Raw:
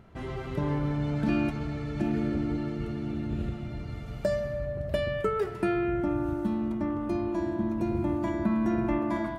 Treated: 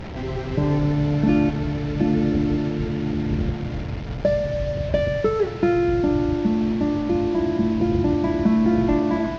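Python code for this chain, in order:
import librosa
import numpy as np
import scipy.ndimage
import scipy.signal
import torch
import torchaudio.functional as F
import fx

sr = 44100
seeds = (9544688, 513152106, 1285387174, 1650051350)

y = fx.delta_mod(x, sr, bps=32000, step_db=-34.5)
y = fx.lowpass(y, sr, hz=1600.0, slope=6)
y = fx.peak_eq(y, sr, hz=1200.0, db=-6.5, octaves=0.52)
y = F.gain(torch.from_numpy(y), 8.5).numpy()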